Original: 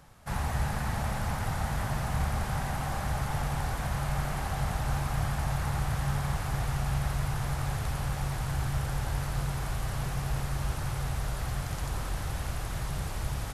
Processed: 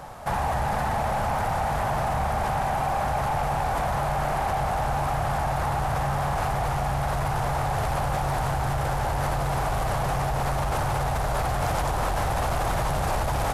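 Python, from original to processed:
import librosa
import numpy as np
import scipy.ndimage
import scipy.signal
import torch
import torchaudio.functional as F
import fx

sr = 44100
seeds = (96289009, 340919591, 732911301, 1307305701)

p1 = fx.peak_eq(x, sr, hz=730.0, db=13.0, octaves=1.6)
p2 = fx.over_compress(p1, sr, threshold_db=-31.0, ratio=-0.5)
p3 = p1 + (p2 * 10.0 ** (1.0 / 20.0))
y = 10.0 ** (-19.0 / 20.0) * np.tanh(p3 / 10.0 ** (-19.0 / 20.0))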